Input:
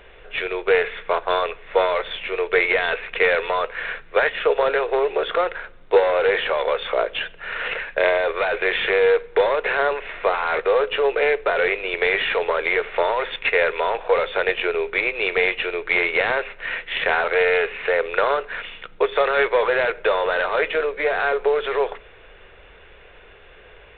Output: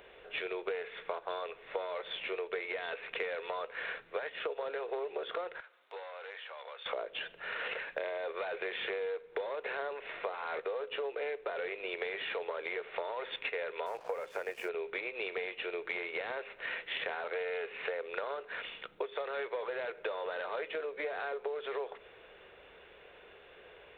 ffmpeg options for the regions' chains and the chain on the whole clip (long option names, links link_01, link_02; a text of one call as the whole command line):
ffmpeg -i in.wav -filter_complex "[0:a]asettb=1/sr,asplit=3[link_01][link_02][link_03];[link_01]atrim=end=5.604[link_04];[link_02]atrim=start=5.6:end=6.86,asetpts=PTS-STARTPTS,afade=type=in:duration=0.004:curve=qsin,afade=type=out:start_time=1.256:duration=0.004:curve=qsin,highpass=900,acompressor=threshold=-46dB:ratio=2:attack=3.2:release=140:knee=1:detection=peak[link_05];[link_03]atrim=start=6.856[link_06];[link_04][link_05]acrossfade=duration=0.004:curve1=hsin:curve2=qsin[link_07];[link_07][link_06]acrossfade=duration=0.004:curve1=qsin:curve2=hsin,asettb=1/sr,asplit=3[link_08][link_09][link_10];[link_08]atrim=end=13.864[link_11];[link_09]atrim=start=13.86:end=14.69,asetpts=PTS-STARTPTS,afade=type=in:duration=0.004:curve=qsin,afade=type=out:start_time=0.826:duration=0.004:curve=qsin,lowpass=frequency=2600:width=0.5412,lowpass=frequency=2600:width=1.3066,aeval=exprs='sgn(val(0))*max(abs(val(0))-0.00794,0)':channel_layout=same[link_12];[link_10]atrim=start=14.686[link_13];[link_11][link_12]acrossfade=duration=0.004:curve1=hsin:curve2=qsin[link_14];[link_14][link_13]acrossfade=duration=0.004:curve1=qsin:curve2=hsin,highpass=frequency=500:poles=1,equalizer=frequency=1900:width=0.41:gain=-9,acompressor=threshold=-34dB:ratio=10" out.wav